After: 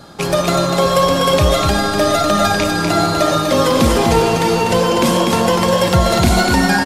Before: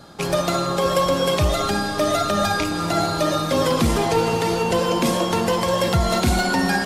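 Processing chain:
single-tap delay 246 ms −5 dB
level +5 dB

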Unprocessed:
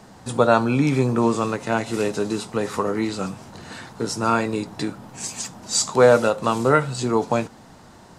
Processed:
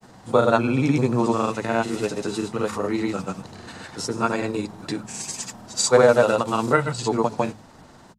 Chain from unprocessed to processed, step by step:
granular cloud, pitch spread up and down by 0 semitones
hum removal 53.77 Hz, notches 4

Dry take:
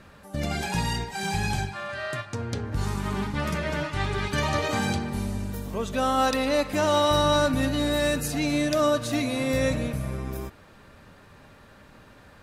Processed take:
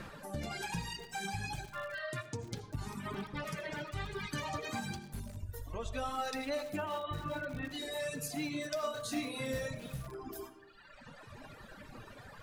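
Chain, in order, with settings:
reverb reduction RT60 1.7 s
0:06.76–0:07.72: Butterworth low-pass 3,200 Hz 36 dB per octave
reverb reduction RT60 1.8 s
0:05.43–0:06.09: low shelf with overshoot 120 Hz +13.5 dB, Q 3
downward compressor 2.5 to 1, threshold −50 dBFS, peak gain reduction 18 dB
flanger 1.2 Hz, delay 5.5 ms, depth 4 ms, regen −38%
0:08.80–0:09.63: double-tracking delay 30 ms −2.5 dB
convolution reverb RT60 0.85 s, pre-delay 40 ms, DRR 10.5 dB
feedback echo at a low word length 394 ms, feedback 35%, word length 8 bits, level −13.5 dB
level +9.5 dB

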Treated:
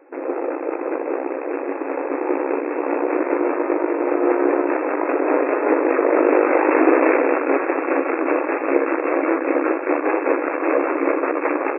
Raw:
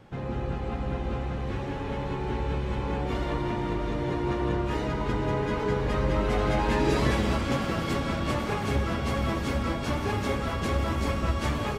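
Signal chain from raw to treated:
harmonic generator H 6 −6 dB, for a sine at −10.5 dBFS
brick-wall band-pass 260–2,700 Hz
hollow resonant body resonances 340/490 Hz, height 8 dB, ringing for 30 ms
level +2 dB

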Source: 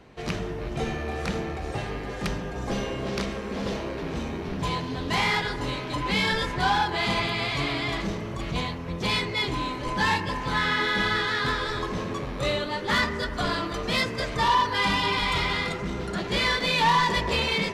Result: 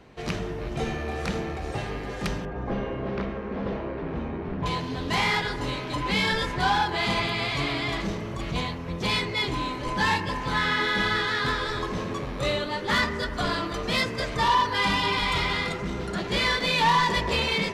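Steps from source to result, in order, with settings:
0:02.45–0:04.66: low-pass filter 1,800 Hz 12 dB per octave

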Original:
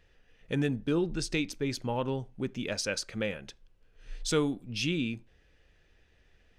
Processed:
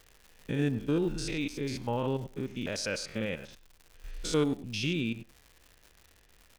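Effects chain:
spectrum averaged block by block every 100 ms
surface crackle 200 per second −45 dBFS
far-end echo of a speakerphone 100 ms, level −16 dB
level +1.5 dB

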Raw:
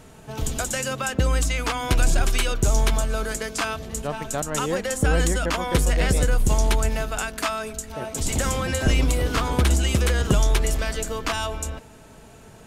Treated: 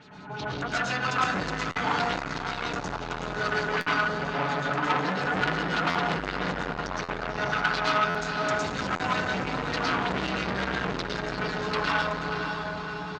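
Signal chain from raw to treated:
mains-hum notches 60/120/180 Hz
comb filter 6.6 ms, depth 44%
downward compressor 3 to 1, threshold −24 dBFS, peak gain reduction 9.5 dB
auto-filter low-pass sine 5.8 Hz 900–5,100 Hz
feedback delay with all-pass diffusion 513 ms, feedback 54%, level −6.5 dB
convolution reverb RT60 0.65 s, pre-delay 97 ms, DRR −5.5 dB
wrong playback speed 25 fps video run at 24 fps
loudspeaker in its box 120–7,100 Hz, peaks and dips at 190 Hz +5 dB, 550 Hz −6 dB, 840 Hz +3 dB, 1,500 Hz +6 dB, 4,100 Hz +6 dB
buffer that repeats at 0:01.70/0:03.80/0:05.89/0:07.03/0:08.09/0:08.94, samples 512, times 4
saturating transformer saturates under 2,000 Hz
level −5.5 dB

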